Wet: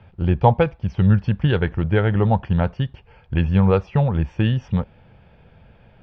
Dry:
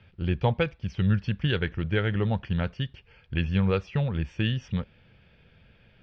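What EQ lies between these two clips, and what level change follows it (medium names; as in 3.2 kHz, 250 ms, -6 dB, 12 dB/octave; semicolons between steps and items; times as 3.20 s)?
bass shelf 410 Hz +11 dB; peaking EQ 840 Hz +14.5 dB 1.4 oct; -2.5 dB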